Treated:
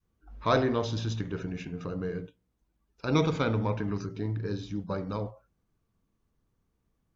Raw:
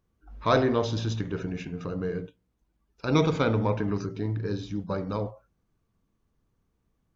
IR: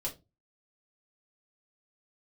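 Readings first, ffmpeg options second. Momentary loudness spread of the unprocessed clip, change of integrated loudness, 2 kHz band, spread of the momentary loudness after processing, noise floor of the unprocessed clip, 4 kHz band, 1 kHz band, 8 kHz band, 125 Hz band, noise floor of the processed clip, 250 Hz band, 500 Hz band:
11 LU, -2.5 dB, -2.0 dB, 11 LU, -75 dBFS, -2.0 dB, -2.5 dB, n/a, -2.0 dB, -77 dBFS, -2.5 dB, -3.5 dB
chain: -af "adynamicequalizer=threshold=0.0158:dfrequency=510:dqfactor=0.73:tfrequency=510:tqfactor=0.73:attack=5:release=100:ratio=0.375:range=2:mode=cutabove:tftype=bell,volume=-2dB"

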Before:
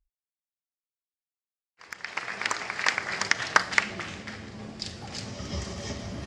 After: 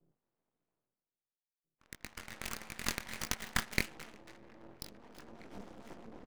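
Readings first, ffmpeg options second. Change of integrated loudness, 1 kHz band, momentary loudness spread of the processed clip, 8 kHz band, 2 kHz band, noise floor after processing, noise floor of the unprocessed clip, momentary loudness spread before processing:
-10.0 dB, -15.5 dB, 20 LU, -7.0 dB, -14.0 dB, under -85 dBFS, under -85 dBFS, 16 LU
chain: -filter_complex "[0:a]adynamicsmooth=sensitivity=5:basefreq=520,bandreject=f=5.3k:w=19,flanger=delay=19:depth=5.3:speed=1.5,tremolo=f=220:d=0.889,areverse,acompressor=mode=upward:threshold=-49dB:ratio=2.5,areverse,afreqshift=120,aemphasis=mode=production:type=75kf,asplit=2[a][b];[b]adelay=1633,volume=-19dB,highshelf=f=4k:g=-36.7[c];[a][c]amix=inputs=2:normalize=0,aeval=exprs='max(val(0),0)':c=same,volume=-4.5dB"

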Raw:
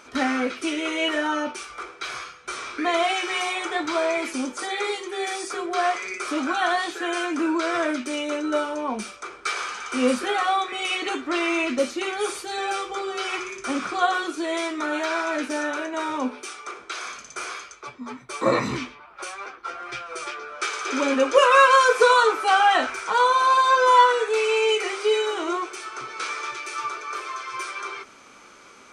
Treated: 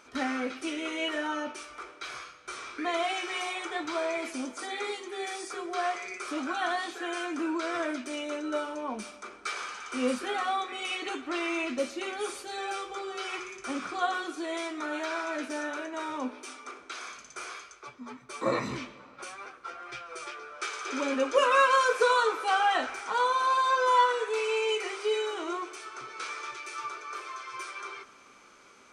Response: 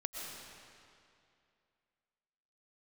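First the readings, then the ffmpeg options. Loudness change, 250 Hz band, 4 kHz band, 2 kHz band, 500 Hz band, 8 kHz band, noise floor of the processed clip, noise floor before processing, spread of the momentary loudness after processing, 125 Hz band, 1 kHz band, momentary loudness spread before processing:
-7.5 dB, -7.5 dB, -7.5 dB, -7.5 dB, -7.5 dB, -7.5 dB, -54 dBFS, -48 dBFS, 17 LU, -7.5 dB, -7.5 dB, 17 LU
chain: -filter_complex "[0:a]asplit=2[a][b];[1:a]atrim=start_sample=2205[c];[b][c]afir=irnorm=-1:irlink=0,volume=-16dB[d];[a][d]amix=inputs=2:normalize=0,volume=-8.5dB"

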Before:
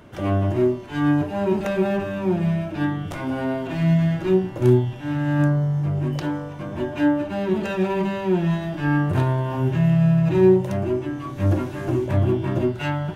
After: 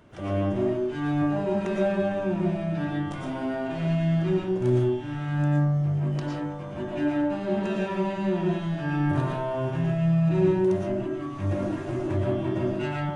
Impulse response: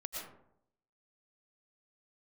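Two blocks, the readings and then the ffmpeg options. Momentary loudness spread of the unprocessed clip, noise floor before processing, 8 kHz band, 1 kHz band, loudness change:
8 LU, -34 dBFS, n/a, -4.0 dB, -4.5 dB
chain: -filter_complex "[0:a]aresample=22050,aresample=44100[a];[1:a]atrim=start_sample=2205,afade=t=out:st=0.29:d=0.01,atrim=end_sample=13230[b];[a][b]afir=irnorm=-1:irlink=0,volume=-3.5dB"

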